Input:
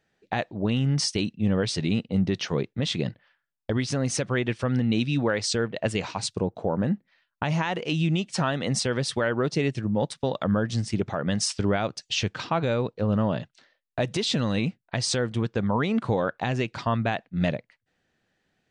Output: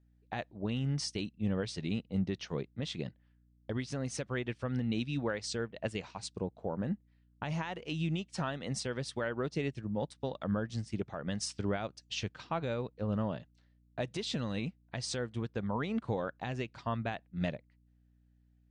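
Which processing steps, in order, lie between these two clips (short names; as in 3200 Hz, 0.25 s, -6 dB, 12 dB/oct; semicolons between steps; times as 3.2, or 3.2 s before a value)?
hum 60 Hz, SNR 22 dB; upward expander 1.5:1, over -40 dBFS; gain -8 dB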